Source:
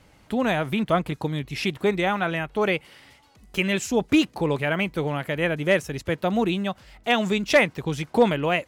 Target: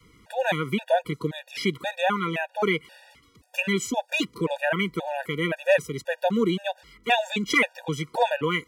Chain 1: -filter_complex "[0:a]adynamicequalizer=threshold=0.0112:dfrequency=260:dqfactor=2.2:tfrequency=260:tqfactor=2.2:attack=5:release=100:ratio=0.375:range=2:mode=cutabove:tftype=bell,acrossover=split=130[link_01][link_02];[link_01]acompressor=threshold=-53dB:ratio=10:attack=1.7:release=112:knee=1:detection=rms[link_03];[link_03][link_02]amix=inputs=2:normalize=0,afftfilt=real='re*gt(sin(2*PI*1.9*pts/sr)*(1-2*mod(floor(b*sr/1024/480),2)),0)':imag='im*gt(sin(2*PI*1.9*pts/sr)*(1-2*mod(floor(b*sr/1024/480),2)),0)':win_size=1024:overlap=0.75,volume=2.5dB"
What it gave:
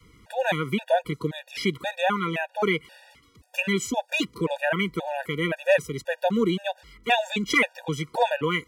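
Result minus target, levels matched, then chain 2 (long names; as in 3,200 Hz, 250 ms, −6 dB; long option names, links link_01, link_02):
downward compressor: peak gain reduction −6.5 dB
-filter_complex "[0:a]adynamicequalizer=threshold=0.0112:dfrequency=260:dqfactor=2.2:tfrequency=260:tqfactor=2.2:attack=5:release=100:ratio=0.375:range=2:mode=cutabove:tftype=bell,acrossover=split=130[link_01][link_02];[link_01]acompressor=threshold=-60dB:ratio=10:attack=1.7:release=112:knee=1:detection=rms[link_03];[link_03][link_02]amix=inputs=2:normalize=0,afftfilt=real='re*gt(sin(2*PI*1.9*pts/sr)*(1-2*mod(floor(b*sr/1024/480),2)),0)':imag='im*gt(sin(2*PI*1.9*pts/sr)*(1-2*mod(floor(b*sr/1024/480),2)),0)':win_size=1024:overlap=0.75,volume=2.5dB"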